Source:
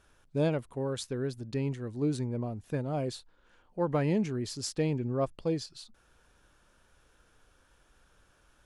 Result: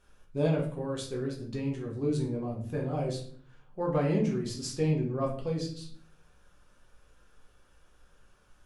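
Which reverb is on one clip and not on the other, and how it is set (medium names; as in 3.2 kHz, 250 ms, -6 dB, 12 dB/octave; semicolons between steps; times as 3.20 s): simulated room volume 62 m³, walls mixed, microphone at 0.92 m; trim -4.5 dB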